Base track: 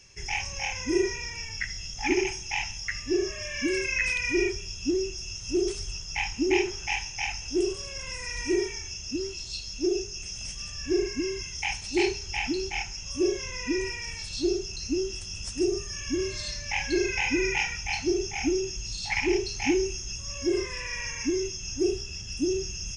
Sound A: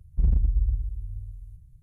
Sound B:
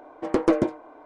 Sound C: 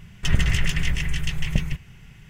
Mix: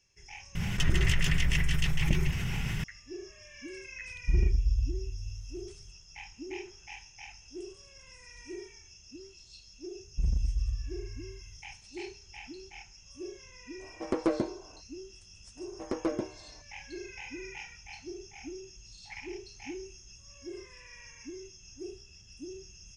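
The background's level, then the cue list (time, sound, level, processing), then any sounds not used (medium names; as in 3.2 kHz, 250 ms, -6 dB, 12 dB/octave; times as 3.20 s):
base track -16.5 dB
0.55 s: add C -8.5 dB + level flattener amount 70%
4.10 s: add A -3.5 dB
10.00 s: add A -7 dB
13.78 s: add B -8 dB, fades 0.05 s
15.57 s: add B -11.5 dB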